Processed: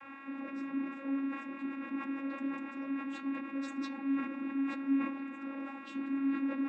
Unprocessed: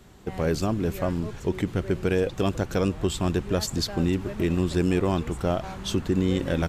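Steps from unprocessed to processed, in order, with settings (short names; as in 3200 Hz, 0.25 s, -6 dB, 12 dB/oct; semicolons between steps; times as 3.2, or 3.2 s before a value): tone controls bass +15 dB, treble -13 dB; notches 60/120/180/240 Hz; in parallel at +2 dB: compressor, threshold -29 dBFS, peak gain reduction 19 dB; on the sum: limiter -13 dBFS, peak gain reduction 12 dB; flange 1.5 Hz, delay 1.9 ms, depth 7.3 ms, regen +12%; band noise 500–2200 Hz -38 dBFS; vocoder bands 16, saw 274 Hz; reverb RT60 0.40 s, pre-delay 3 ms, DRR 4 dB; sustainer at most 71 dB/s; gain -8.5 dB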